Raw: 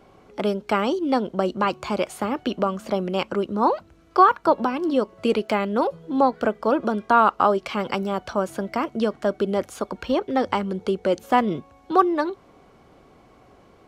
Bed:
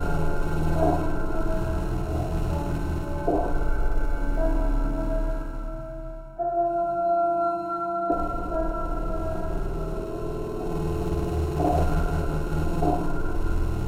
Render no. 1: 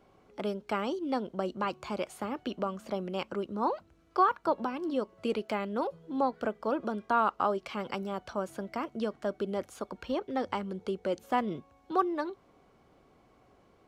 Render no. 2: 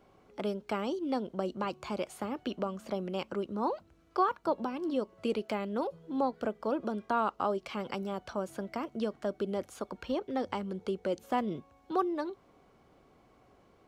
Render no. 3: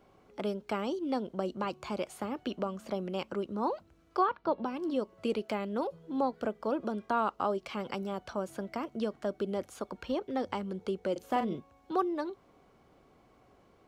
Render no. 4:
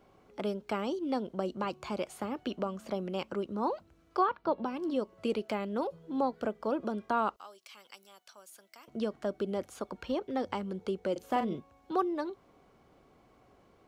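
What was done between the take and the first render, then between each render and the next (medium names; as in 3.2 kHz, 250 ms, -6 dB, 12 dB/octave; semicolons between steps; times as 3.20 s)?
trim -10 dB
dynamic bell 1.5 kHz, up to -5 dB, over -40 dBFS, Q 0.76
4.21–4.65 s: low-pass 4.4 kHz 24 dB/octave; 11.12–11.55 s: doubling 39 ms -7 dB
7.36–8.88 s: differentiator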